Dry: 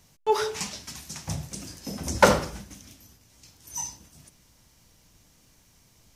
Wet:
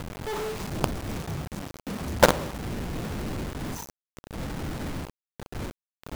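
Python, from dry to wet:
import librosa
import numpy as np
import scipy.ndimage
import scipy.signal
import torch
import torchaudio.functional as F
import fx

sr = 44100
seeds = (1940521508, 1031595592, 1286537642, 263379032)

y = scipy.signal.medfilt(x, 25)
y = fx.dmg_wind(y, sr, seeds[0], corner_hz=210.0, level_db=-35.0)
y = fx.quant_companded(y, sr, bits=2)
y = F.gain(torch.from_numpy(y), -5.0).numpy()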